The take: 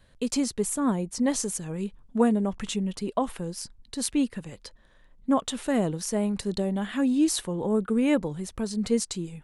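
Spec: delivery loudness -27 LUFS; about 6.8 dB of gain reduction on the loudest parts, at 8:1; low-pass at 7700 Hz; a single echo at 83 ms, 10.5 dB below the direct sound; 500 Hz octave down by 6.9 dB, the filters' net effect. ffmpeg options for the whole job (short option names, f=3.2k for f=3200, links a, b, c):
-af "lowpass=7.7k,equalizer=f=500:t=o:g=-8.5,acompressor=threshold=-27dB:ratio=8,aecho=1:1:83:0.299,volume=5.5dB"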